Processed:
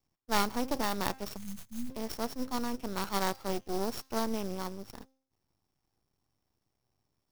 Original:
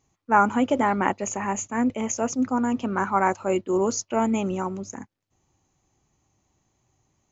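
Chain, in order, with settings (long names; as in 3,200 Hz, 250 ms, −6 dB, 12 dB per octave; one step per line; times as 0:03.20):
samples sorted by size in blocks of 8 samples
hum removal 264.5 Hz, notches 27
half-wave rectification
time-frequency box erased 0:01.36–0:01.90, 250–6,100 Hz
converter with an unsteady clock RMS 0.024 ms
level −7 dB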